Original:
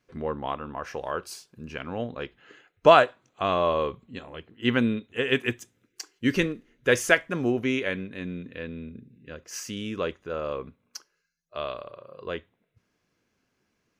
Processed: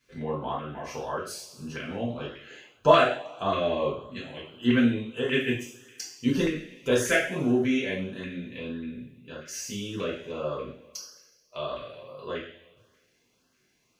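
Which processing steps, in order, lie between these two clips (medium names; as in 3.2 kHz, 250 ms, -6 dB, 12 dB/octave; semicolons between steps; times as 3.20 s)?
two-slope reverb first 0.5 s, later 1.6 s, from -21 dB, DRR -7 dB; LFO notch saw up 1.7 Hz 750–2500 Hz; tape noise reduction on one side only encoder only; trim -8 dB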